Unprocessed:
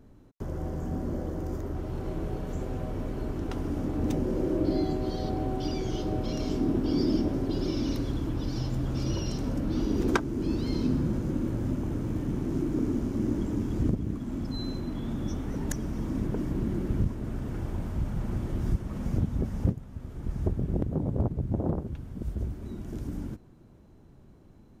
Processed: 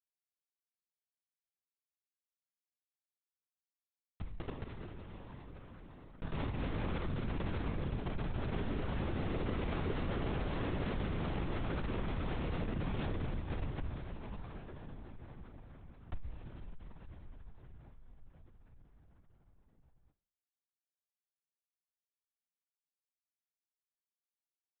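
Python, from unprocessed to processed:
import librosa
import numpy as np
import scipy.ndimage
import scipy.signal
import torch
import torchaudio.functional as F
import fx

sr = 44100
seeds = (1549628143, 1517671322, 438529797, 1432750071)

y = fx.doppler_pass(x, sr, speed_mps=15, closest_m=15.0, pass_at_s=10.21)
y = fx.highpass(y, sr, hz=160.0, slope=6)
y = fx.peak_eq(y, sr, hz=250.0, db=7.5, octaves=2.3)
y = fx.schmitt(y, sr, flips_db=-29.5)
y = fx.comb_fb(y, sr, f0_hz=340.0, decay_s=0.54, harmonics='all', damping=0.0, mix_pct=80)
y = fx.rev_plate(y, sr, seeds[0], rt60_s=4.8, hf_ratio=0.85, predelay_ms=0, drr_db=7.5)
y = fx.lpc_vocoder(y, sr, seeds[1], excitation='whisper', order=10)
y = fx.env_flatten(y, sr, amount_pct=50)
y = y * 10.0 ** (8.0 / 20.0)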